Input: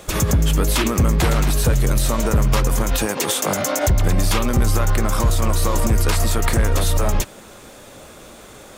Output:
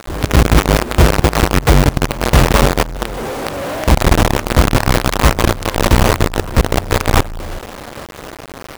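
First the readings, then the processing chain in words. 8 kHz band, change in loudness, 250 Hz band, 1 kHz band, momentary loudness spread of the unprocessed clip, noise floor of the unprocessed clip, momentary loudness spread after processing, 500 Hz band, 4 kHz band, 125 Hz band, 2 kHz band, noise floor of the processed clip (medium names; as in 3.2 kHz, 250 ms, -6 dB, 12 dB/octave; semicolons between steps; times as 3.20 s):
-0.5 dB, +5.0 dB, +6.0 dB, +8.0 dB, 2 LU, -42 dBFS, 17 LU, +6.5 dB, +5.5 dB, +4.5 dB, +8.5 dB, -33 dBFS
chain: median filter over 25 samples; wow and flutter 110 cents; steep low-pass 1.4 kHz 36 dB/octave; peaking EQ 190 Hz -9.5 dB 0.39 oct; doubling 14 ms -12 dB; on a send: feedback delay 183 ms, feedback 24%, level -7 dB; on the sum: companded quantiser 2-bit; in parallel at -3 dB: compression, threshold -19 dBFS, peak gain reduction 15.5 dB; on the sum: loudness maximiser 0 dB; trim -1 dB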